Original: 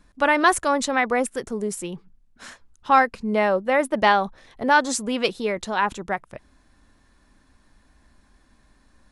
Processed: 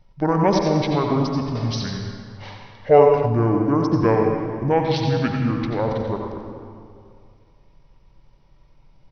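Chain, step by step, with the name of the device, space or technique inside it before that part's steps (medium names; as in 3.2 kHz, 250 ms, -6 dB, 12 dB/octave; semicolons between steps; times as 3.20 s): monster voice (pitch shift -10.5 st; bass shelf 240 Hz +8 dB; delay 89 ms -9 dB; reverberation RT60 2.3 s, pre-delay 71 ms, DRR 2.5 dB); 1.55–3.26 s: ten-band graphic EQ 250 Hz -5 dB, 500 Hz +8 dB, 2 kHz +8 dB, 4 kHz +4 dB, 8 kHz +5 dB; trim -3.5 dB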